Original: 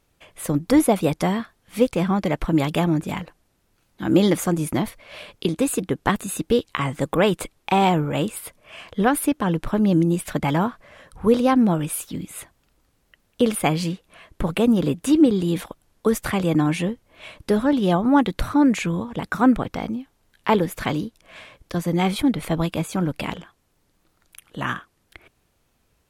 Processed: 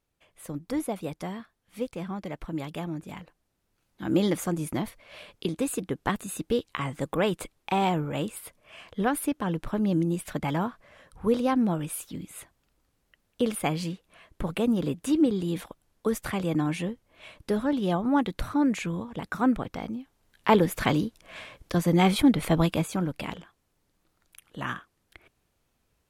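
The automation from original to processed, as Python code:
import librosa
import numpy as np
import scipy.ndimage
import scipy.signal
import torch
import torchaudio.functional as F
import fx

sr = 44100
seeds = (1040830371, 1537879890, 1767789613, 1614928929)

y = fx.gain(x, sr, db=fx.line((3.0, -13.5), (4.06, -7.0), (19.89, -7.0), (20.68, 0.0), (22.69, 0.0), (23.1, -6.5)))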